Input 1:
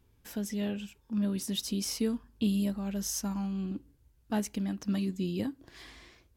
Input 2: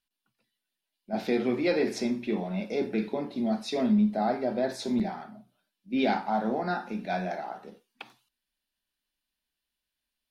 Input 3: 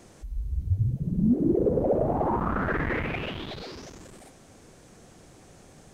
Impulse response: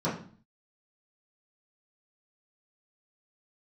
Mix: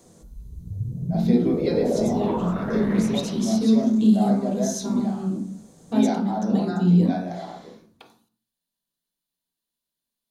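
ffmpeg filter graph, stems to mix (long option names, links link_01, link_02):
-filter_complex "[0:a]lowpass=7300,adelay=1600,volume=-1dB,asplit=2[link_01][link_02];[link_02]volume=-5.5dB[link_03];[1:a]volume=-4dB,asplit=2[link_04][link_05];[link_05]volume=-11.5dB[link_06];[2:a]volume=-5dB,asplit=2[link_07][link_08];[link_08]volume=-13dB[link_09];[3:a]atrim=start_sample=2205[link_10];[link_03][link_06][link_09]amix=inputs=3:normalize=0[link_11];[link_11][link_10]afir=irnorm=-1:irlink=0[link_12];[link_01][link_04][link_07][link_12]amix=inputs=4:normalize=0,aexciter=amount=7.4:drive=3.2:freq=3800,highshelf=frequency=3000:gain=-11.5"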